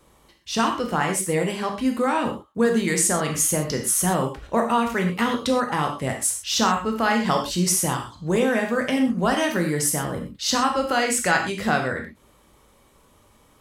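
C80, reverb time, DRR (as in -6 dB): 10.5 dB, not exponential, 2.5 dB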